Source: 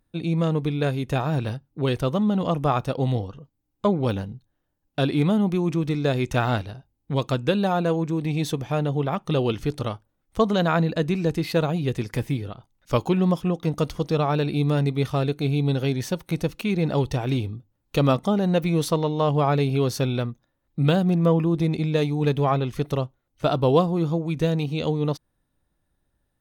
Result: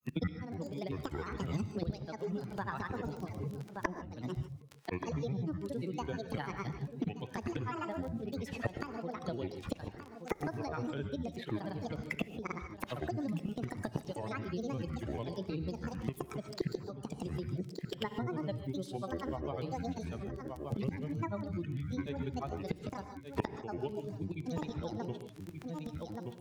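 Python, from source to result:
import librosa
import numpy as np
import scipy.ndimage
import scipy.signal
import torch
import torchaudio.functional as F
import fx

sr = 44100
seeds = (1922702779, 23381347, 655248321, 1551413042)

p1 = fx.bin_expand(x, sr, power=1.5)
p2 = scipy.signal.sosfilt(scipy.signal.butter(4, 140.0, 'highpass', fs=sr, output='sos'), p1)
p3 = fx.high_shelf(p2, sr, hz=6400.0, db=-7.5)
p4 = fx.gate_flip(p3, sr, shuts_db=-26.0, range_db=-26)
p5 = fx.wow_flutter(p4, sr, seeds[0], rate_hz=2.1, depth_cents=24.0)
p6 = fx.dmg_crackle(p5, sr, seeds[1], per_s=17.0, level_db=-58.0)
p7 = fx.granulator(p6, sr, seeds[2], grain_ms=100.0, per_s=20.0, spray_ms=100.0, spread_st=12)
p8 = p7 + fx.echo_single(p7, sr, ms=1176, db=-18.5, dry=0)
p9 = fx.rev_gated(p8, sr, seeds[3], gate_ms=170, shape='rising', drr_db=10.0)
p10 = fx.band_squash(p9, sr, depth_pct=100)
y = p10 * 10.0 ** (12.5 / 20.0)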